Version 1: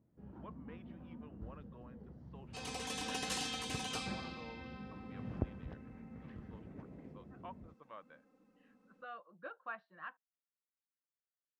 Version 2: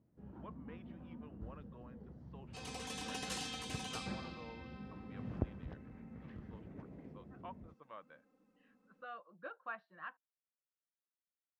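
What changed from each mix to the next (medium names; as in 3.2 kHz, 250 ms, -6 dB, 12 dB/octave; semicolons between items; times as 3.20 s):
second sound -3.5 dB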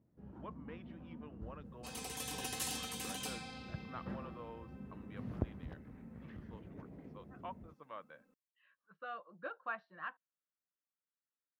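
speech +3.5 dB; second sound: entry -0.70 s; master: remove low-pass 6.2 kHz 12 dB/octave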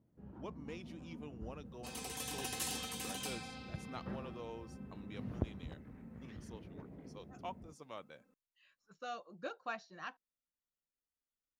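speech: remove cabinet simulation 170–2700 Hz, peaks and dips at 250 Hz -8 dB, 390 Hz -8 dB, 760 Hz -5 dB, 1.1 kHz +4 dB, 1.6 kHz +4 dB, 2.4 kHz -6 dB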